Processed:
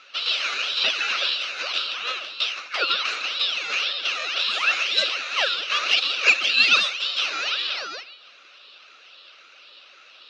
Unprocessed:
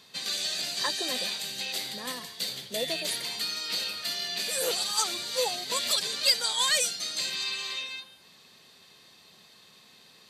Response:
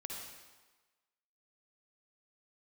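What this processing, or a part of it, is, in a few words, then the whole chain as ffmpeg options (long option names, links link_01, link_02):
voice changer toy: -filter_complex "[0:a]aeval=exprs='val(0)*sin(2*PI*1500*n/s+1500*0.55/1.9*sin(2*PI*1.9*n/s))':channel_layout=same,highpass=480,equalizer=frequency=550:width_type=q:width=4:gain=6,equalizer=frequency=900:width_type=q:width=4:gain=-10,equalizer=frequency=1300:width_type=q:width=4:gain=9,equalizer=frequency=1900:width_type=q:width=4:gain=-6,equalizer=frequency=2700:width_type=q:width=4:gain=9,equalizer=frequency=3900:width_type=q:width=4:gain=9,lowpass=frequency=4400:width=0.5412,lowpass=frequency=4400:width=1.3066,asettb=1/sr,asplit=3[link_01][link_02][link_03];[link_01]atrim=end=4.134[link_04];[link_02]atrim=start=4.13:end=5.48,asetpts=PTS-STARTPTS,afade=type=in:duration=0.004:curve=qsin,afade=type=out:start_time=1.346:duration=0.004:curve=qsin,highpass=frequency=190:width=0.5412,highpass=frequency=190:width=1.3066[link_05];[link_03]atrim=start=5.476[link_06];[link_04][link_05]acrossfade=duration=0.004:curve1=hsin:curve2=qsin[link_07];[link_07][link_06]acrossfade=duration=0.004:curve1=qsin:curve2=hsin,volume=7dB"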